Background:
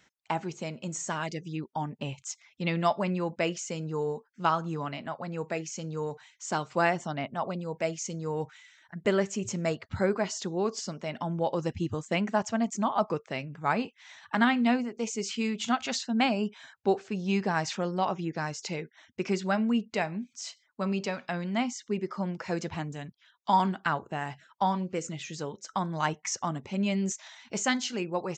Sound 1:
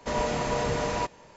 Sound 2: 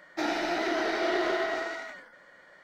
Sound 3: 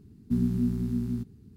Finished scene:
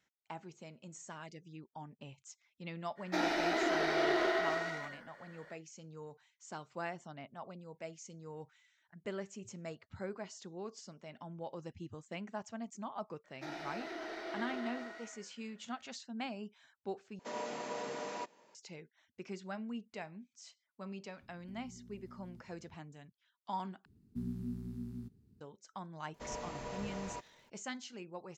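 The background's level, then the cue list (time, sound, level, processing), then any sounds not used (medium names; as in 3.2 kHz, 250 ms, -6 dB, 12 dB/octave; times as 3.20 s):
background -15.5 dB
2.95 s: add 2 -3.5 dB, fades 0.05 s
13.24 s: add 2 -15 dB
17.19 s: replace with 1 -12.5 dB + high-pass 210 Hz 24 dB/octave
21.18 s: add 3 -13 dB + compression 8:1, threshold -39 dBFS
23.85 s: replace with 3 -14 dB
26.14 s: add 1 -16 dB + crackle 400 per s -47 dBFS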